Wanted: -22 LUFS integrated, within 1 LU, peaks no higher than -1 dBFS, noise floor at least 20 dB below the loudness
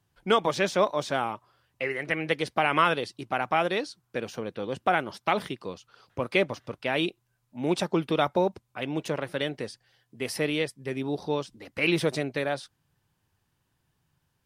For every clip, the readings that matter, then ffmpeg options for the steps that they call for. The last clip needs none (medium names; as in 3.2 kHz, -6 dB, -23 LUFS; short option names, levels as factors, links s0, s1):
loudness -28.5 LUFS; peak level -8.5 dBFS; loudness target -22.0 LUFS
-> -af "volume=2.11"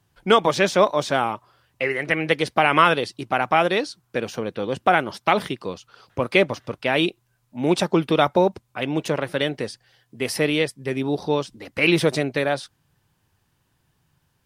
loudness -22.0 LUFS; peak level -2.0 dBFS; noise floor -69 dBFS